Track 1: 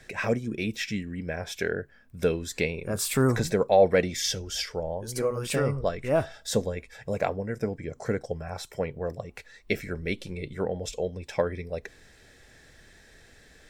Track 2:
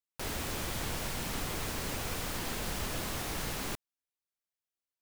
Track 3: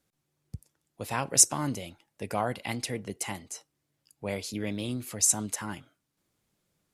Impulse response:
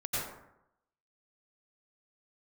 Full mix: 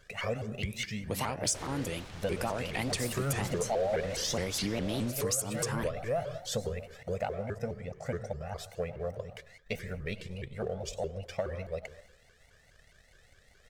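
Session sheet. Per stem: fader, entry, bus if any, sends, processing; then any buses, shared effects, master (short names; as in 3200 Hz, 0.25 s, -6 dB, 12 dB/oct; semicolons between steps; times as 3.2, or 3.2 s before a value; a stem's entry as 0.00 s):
-11.5 dB, 0.00 s, bus A, send -18 dB, comb 1.6 ms, depth 85%
-1.5 dB, 1.35 s, no bus, no send, LPF 5600 Hz 12 dB/oct; limiter -28.5 dBFS, peak gain reduction 4 dB; auto duck -11 dB, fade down 1.95 s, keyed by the first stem
+2.5 dB, 0.10 s, bus A, no send, dry
bus A: 0.0 dB, compressor 8:1, threshold -32 dBFS, peak gain reduction 20.5 dB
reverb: on, RT60 0.80 s, pre-delay 83 ms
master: sample leveller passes 1; shaped vibrato saw up 4.8 Hz, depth 250 cents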